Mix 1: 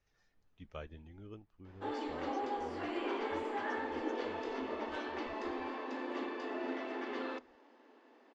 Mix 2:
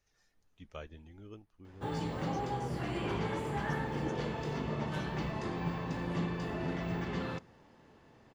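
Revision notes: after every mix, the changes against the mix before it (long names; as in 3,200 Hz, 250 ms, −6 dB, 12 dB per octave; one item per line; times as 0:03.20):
background: remove Butterworth high-pass 240 Hz 96 dB per octave
master: remove high-frequency loss of the air 120 metres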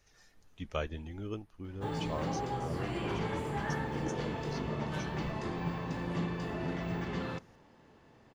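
speech +10.5 dB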